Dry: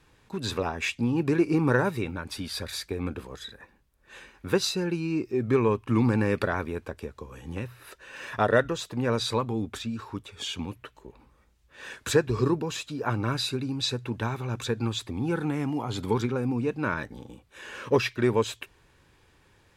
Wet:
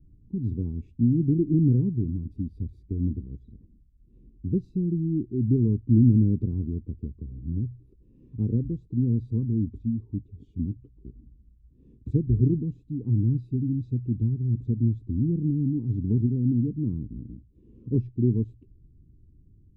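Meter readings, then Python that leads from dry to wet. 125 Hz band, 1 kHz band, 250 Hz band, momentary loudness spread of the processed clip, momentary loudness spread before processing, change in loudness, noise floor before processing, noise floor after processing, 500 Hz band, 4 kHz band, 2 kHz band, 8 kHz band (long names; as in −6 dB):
+7.5 dB, below −40 dB, +3.0 dB, 15 LU, 17 LU, +1.5 dB, −62 dBFS, −57 dBFS, −10.0 dB, below −40 dB, below −40 dB, below −40 dB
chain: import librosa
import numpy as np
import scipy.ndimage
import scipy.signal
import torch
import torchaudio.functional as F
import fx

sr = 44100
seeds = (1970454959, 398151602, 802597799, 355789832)

y = scipy.signal.sosfilt(scipy.signal.cheby2(4, 40, 600.0, 'lowpass', fs=sr, output='sos'), x)
y = fx.tilt_eq(y, sr, slope=-2.5)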